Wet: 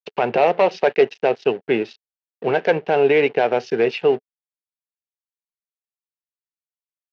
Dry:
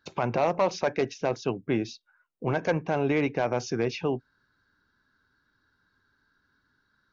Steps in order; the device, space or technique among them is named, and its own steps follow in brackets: blown loudspeaker (crossover distortion -44 dBFS; cabinet simulation 220–4600 Hz, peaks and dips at 290 Hz -6 dB, 430 Hz +9 dB, 750 Hz +4 dB, 1.1 kHz -6 dB, 1.8 kHz +4 dB, 2.8 kHz +7 dB); trim +7 dB

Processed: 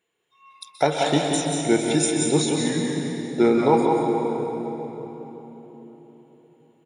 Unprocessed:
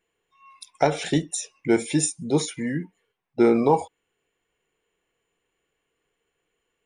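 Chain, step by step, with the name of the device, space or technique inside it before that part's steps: PA in a hall (high-pass 110 Hz; peaking EQ 3.7 kHz +7 dB 0.24 oct; delay 183 ms -5.5 dB; reverberation RT60 4.1 s, pre-delay 120 ms, DRR 2 dB)

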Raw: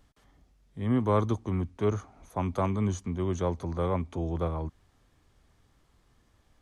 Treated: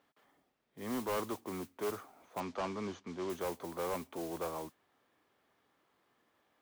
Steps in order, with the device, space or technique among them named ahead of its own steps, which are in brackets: carbon microphone (band-pass 340–3200 Hz; saturation -29 dBFS, distortion -9 dB; modulation noise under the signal 13 dB); 2.40–3.30 s: low-pass 6.3 kHz 24 dB/octave; trim -2 dB

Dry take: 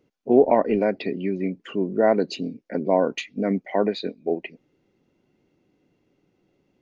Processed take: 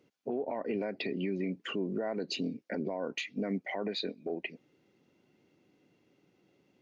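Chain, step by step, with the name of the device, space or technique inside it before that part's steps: broadcast voice chain (high-pass 98 Hz; de-esser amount 70%; compression 4:1, threshold -25 dBFS, peak gain reduction 12.5 dB; peaking EQ 3.6 kHz +4 dB 3 oct; peak limiter -23 dBFS, peak gain reduction 10.5 dB); trim -2 dB

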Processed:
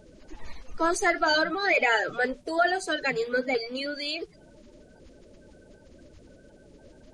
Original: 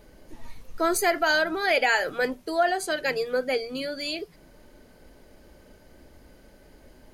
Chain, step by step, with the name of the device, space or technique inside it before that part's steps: clip after many re-uploads (low-pass 8.2 kHz 24 dB/octave; coarse spectral quantiser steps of 30 dB)

